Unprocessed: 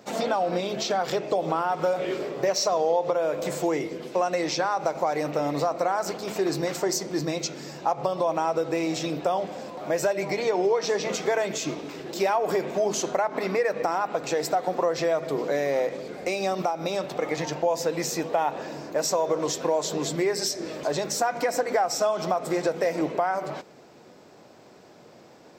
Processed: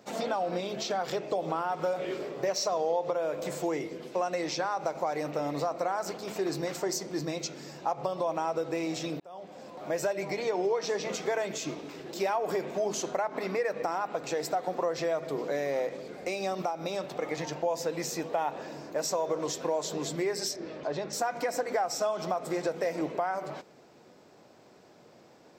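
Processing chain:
0:09.20–0:09.86: fade in
0:20.56–0:21.13: high-frequency loss of the air 160 metres
level −5.5 dB

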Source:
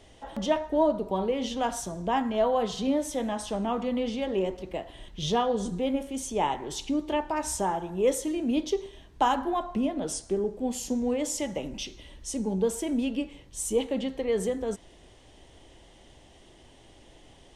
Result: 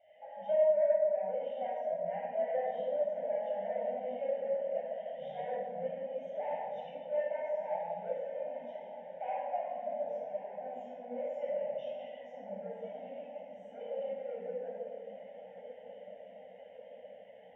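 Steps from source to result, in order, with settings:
dynamic equaliser 2,200 Hz, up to −3 dB, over −45 dBFS, Q 1.1
downward compressor 2 to 1, threshold −46 dBFS, peak gain reduction 15 dB
hard clipping −38.5 dBFS, distortion −10 dB
loudspeaker in its box 320–4,200 Hz, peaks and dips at 390 Hz −10 dB, 580 Hz +8 dB, 1,200 Hz −9 dB, 1,800 Hz +3 dB
phaser with its sweep stopped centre 1,200 Hz, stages 6
feedback delay with all-pass diffusion 1,136 ms, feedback 75%, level −8.5 dB
convolution reverb RT60 2.0 s, pre-delay 20 ms, DRR −6.5 dB
every bin expanded away from the loudest bin 1.5 to 1
level +1.5 dB

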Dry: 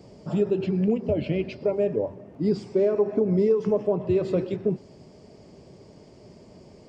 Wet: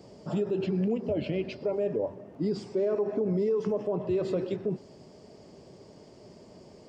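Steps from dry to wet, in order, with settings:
low-shelf EQ 180 Hz −7 dB
brickwall limiter −20.5 dBFS, peak gain reduction 7 dB
parametric band 2,300 Hz −3.5 dB 0.33 octaves

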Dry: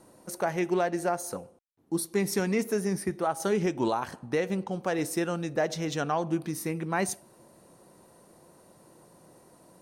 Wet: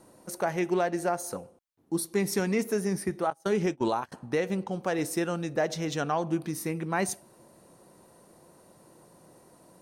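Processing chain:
0:03.30–0:04.12: noise gate −29 dBFS, range −25 dB

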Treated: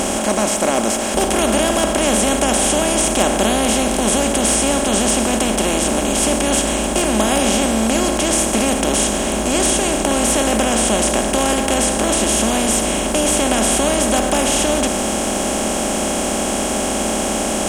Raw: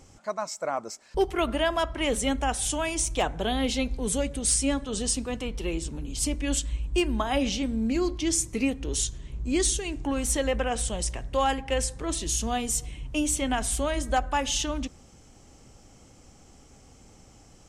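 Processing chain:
compressor on every frequency bin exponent 0.2
high-shelf EQ 10,000 Hz +9 dB
hollow resonant body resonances 210/600/3,300 Hz, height 10 dB, ringing for 55 ms
level −2.5 dB

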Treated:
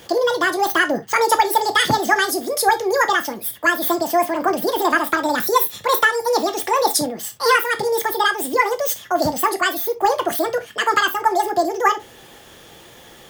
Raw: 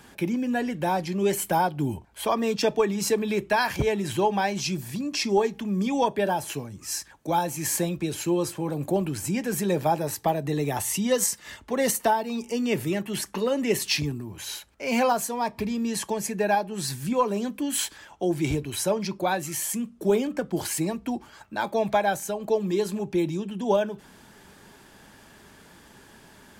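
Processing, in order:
wrong playback speed 7.5 ips tape played at 15 ips
reverb whose tail is shaped and stops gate 90 ms falling, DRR 7.5 dB
level +6.5 dB

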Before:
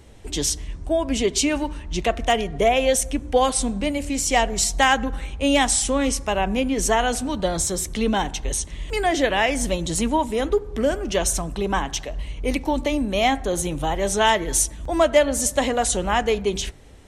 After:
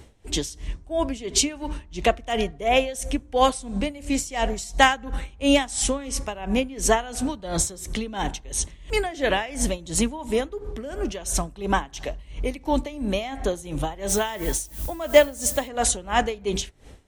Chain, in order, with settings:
0:14.08–0:15.67: background noise violet −37 dBFS
tremolo with a sine in dB 2.9 Hz, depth 18 dB
level +2.5 dB

